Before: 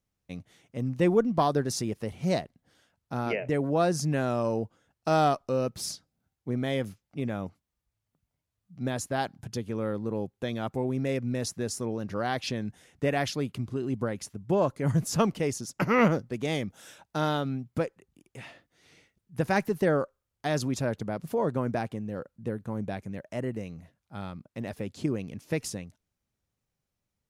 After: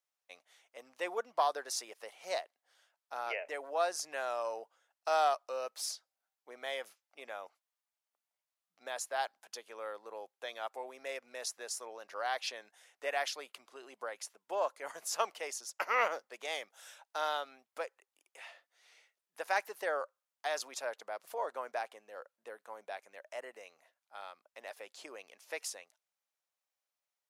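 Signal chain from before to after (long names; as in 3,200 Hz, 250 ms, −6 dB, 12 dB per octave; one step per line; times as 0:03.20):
high-pass filter 610 Hz 24 dB per octave
level −3.5 dB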